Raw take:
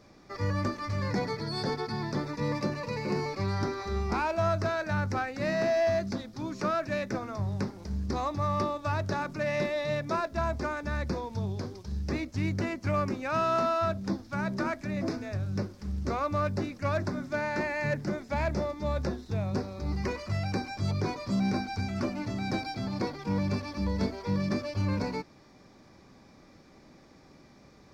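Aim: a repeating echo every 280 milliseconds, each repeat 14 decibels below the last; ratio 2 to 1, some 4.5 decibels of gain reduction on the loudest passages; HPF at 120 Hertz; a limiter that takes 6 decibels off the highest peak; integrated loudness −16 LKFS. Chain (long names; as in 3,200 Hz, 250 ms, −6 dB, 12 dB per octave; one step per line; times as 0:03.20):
high-pass filter 120 Hz
downward compressor 2 to 1, threshold −32 dBFS
brickwall limiter −26.5 dBFS
repeating echo 280 ms, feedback 20%, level −14 dB
level +20.5 dB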